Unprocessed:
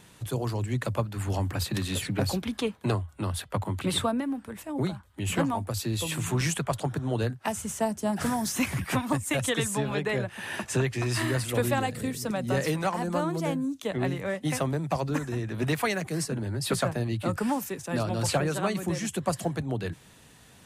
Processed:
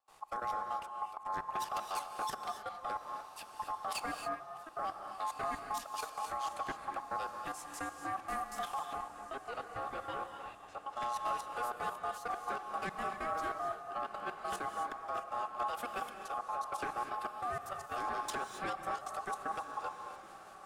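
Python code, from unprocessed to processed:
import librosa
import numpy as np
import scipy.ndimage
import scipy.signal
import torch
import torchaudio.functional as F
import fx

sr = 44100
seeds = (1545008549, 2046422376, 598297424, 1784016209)

y = fx.low_shelf(x, sr, hz=320.0, db=5.5)
y = fx.level_steps(y, sr, step_db=14)
y = fx.rotary(y, sr, hz=5.5)
y = 10.0 ** (-28.0 / 20.0) * np.tanh(y / 10.0 ** (-28.0 / 20.0))
y = fx.step_gate(y, sr, bpm=192, pattern='.xx.xxxx.xx..xx', floor_db=-24.0, edge_ms=4.5)
y = y * np.sin(2.0 * np.pi * 960.0 * np.arange(len(y)) / sr)
y = fx.spacing_loss(y, sr, db_at_10k=27, at=(8.79, 10.96))
y = fx.echo_diffused(y, sr, ms=1523, feedback_pct=42, wet_db=-14.0)
y = fx.rev_gated(y, sr, seeds[0], gate_ms=300, shape='rising', drr_db=6.0)
y = y * librosa.db_to_amplitude(-1.5)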